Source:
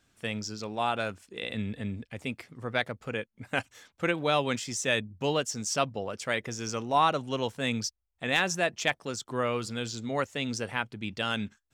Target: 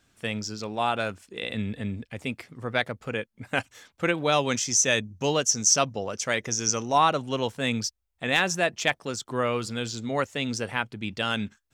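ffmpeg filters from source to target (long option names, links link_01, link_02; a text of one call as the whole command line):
ffmpeg -i in.wav -filter_complex "[0:a]asettb=1/sr,asplit=3[link_01][link_02][link_03];[link_01]atrim=end=4.324[link_04];[link_02]atrim=start=4.32:end=6.98,asetpts=PTS-STARTPTS,afade=type=in:duration=0.004:curve=qsin,afade=type=out:start_time=2.656:duration=0.004:curve=qsin,equalizer=frequency=6100:width=3.7:gain=13.5[link_05];[link_03]atrim=start=6.976[link_06];[link_04][link_05]acrossfade=duration=0.004:curve1=hsin:curve2=qsin[link_07];[link_07][link_06]acrossfade=duration=0.004:curve1=qsin:curve2=hsin,volume=3dB" out.wav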